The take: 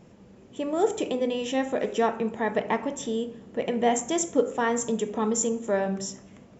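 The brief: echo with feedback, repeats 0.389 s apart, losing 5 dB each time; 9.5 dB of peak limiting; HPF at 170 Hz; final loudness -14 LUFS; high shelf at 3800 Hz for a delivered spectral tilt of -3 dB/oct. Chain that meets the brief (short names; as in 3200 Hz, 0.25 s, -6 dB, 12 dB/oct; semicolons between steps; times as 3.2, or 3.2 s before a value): HPF 170 Hz; high shelf 3800 Hz +6.5 dB; limiter -19.5 dBFS; feedback echo 0.389 s, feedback 56%, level -5 dB; gain +14 dB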